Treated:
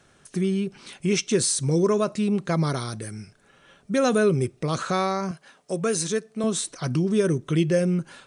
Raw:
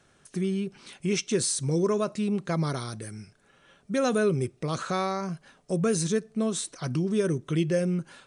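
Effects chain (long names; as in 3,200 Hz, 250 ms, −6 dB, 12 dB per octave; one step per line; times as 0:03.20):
0:05.31–0:06.44: high-pass filter 400 Hz 6 dB per octave
level +4 dB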